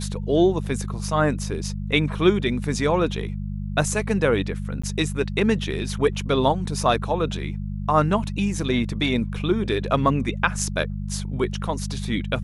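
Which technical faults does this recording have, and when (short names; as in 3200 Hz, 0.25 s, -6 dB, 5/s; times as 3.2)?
hum 50 Hz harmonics 4 -29 dBFS
4.82–4.83 gap 15 ms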